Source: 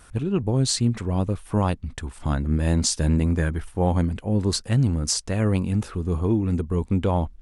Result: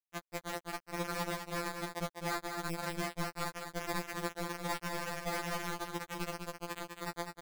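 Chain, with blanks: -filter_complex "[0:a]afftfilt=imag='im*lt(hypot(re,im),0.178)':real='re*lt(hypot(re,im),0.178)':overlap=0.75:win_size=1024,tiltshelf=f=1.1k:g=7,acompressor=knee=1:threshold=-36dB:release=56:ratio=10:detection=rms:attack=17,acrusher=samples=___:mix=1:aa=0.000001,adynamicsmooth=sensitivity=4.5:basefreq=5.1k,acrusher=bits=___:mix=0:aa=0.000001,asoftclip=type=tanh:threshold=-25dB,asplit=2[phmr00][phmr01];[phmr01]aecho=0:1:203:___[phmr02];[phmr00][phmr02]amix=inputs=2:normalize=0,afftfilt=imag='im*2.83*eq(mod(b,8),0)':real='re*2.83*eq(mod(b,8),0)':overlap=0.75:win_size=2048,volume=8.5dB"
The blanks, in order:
16, 4, 0.501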